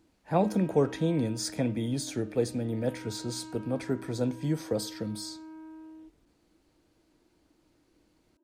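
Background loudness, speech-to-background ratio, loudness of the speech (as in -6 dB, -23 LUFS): -46.0 LUFS, 15.0 dB, -31.0 LUFS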